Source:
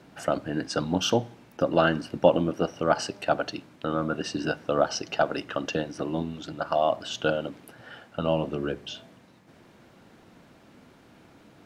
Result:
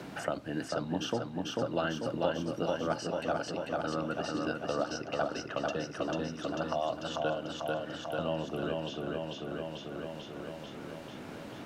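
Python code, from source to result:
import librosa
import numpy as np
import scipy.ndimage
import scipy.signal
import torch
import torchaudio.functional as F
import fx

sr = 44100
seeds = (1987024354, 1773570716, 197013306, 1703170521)

y = fx.echo_feedback(x, sr, ms=443, feedback_pct=58, wet_db=-4.0)
y = fx.band_squash(y, sr, depth_pct=70)
y = y * librosa.db_to_amplitude(-8.5)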